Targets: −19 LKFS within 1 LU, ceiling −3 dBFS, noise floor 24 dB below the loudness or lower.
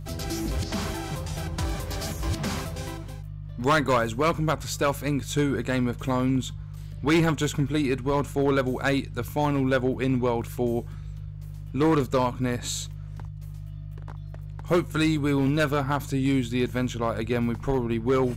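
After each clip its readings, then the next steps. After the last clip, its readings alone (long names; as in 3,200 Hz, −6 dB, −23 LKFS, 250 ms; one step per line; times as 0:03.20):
share of clipped samples 1.0%; peaks flattened at −16.0 dBFS; mains hum 50 Hz; hum harmonics up to 150 Hz; level of the hum −35 dBFS; integrated loudness −26.0 LKFS; sample peak −16.0 dBFS; target loudness −19.0 LKFS
→ clipped peaks rebuilt −16 dBFS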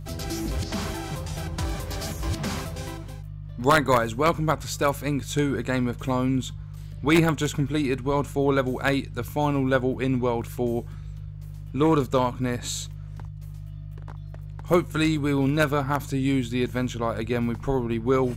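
share of clipped samples 0.0%; mains hum 50 Hz; hum harmonics up to 150 Hz; level of the hum −34 dBFS
→ hum removal 50 Hz, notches 3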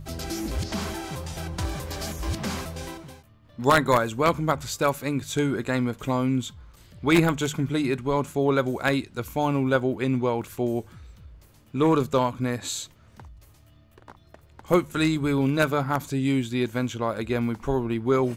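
mains hum none found; integrated loudness −25.5 LKFS; sample peak −6.5 dBFS; target loudness −19.0 LKFS
→ level +6.5 dB
brickwall limiter −3 dBFS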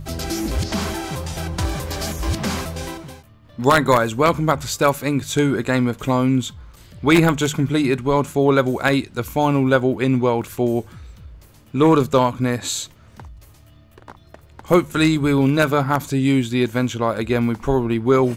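integrated loudness −19.5 LKFS; sample peak −3.0 dBFS; background noise floor −49 dBFS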